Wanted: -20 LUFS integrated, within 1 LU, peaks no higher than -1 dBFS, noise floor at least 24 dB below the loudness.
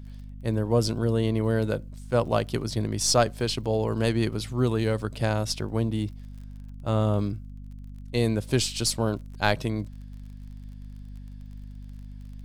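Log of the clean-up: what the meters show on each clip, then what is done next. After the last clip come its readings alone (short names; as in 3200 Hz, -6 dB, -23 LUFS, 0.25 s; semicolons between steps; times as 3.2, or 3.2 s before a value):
ticks 32/s; hum 50 Hz; harmonics up to 250 Hz; hum level -38 dBFS; loudness -26.5 LUFS; peak -5.5 dBFS; loudness target -20.0 LUFS
-> de-click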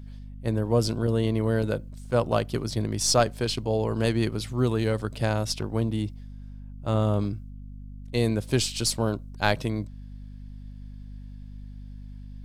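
ticks 0.080/s; hum 50 Hz; harmonics up to 250 Hz; hum level -38 dBFS
-> notches 50/100/150/200/250 Hz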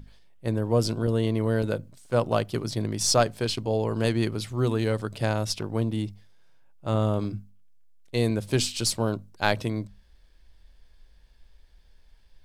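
hum none; loudness -27.0 LUFS; peak -5.5 dBFS; loudness target -20.0 LUFS
-> gain +7 dB; limiter -1 dBFS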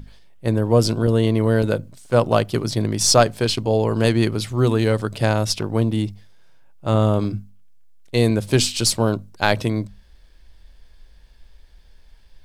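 loudness -20.0 LUFS; peak -1.0 dBFS; noise floor -49 dBFS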